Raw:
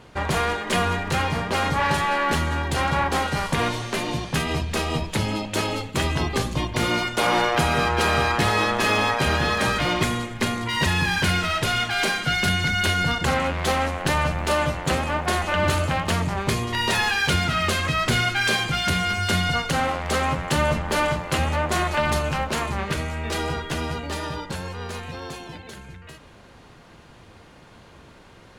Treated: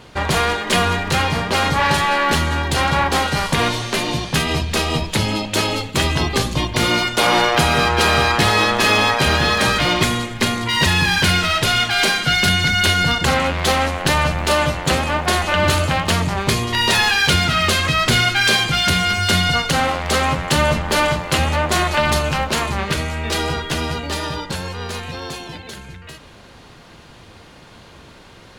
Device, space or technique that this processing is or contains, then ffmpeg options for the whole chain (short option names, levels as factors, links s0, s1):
presence and air boost: -af "equalizer=f=4100:t=o:w=1.3:g=4.5,highshelf=f=12000:g=5.5,volume=1.68"